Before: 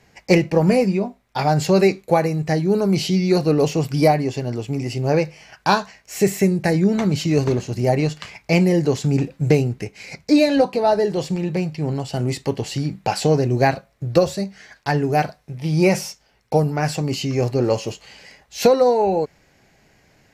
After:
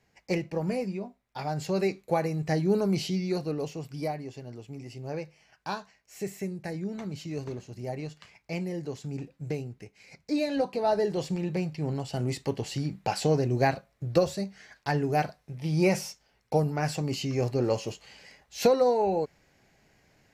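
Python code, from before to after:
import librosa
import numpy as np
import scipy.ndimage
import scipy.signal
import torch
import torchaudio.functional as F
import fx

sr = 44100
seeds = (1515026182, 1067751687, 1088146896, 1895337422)

y = fx.gain(x, sr, db=fx.line((1.54, -14.0), (2.69, -6.0), (3.79, -17.0), (10.0, -17.0), (10.98, -7.5)))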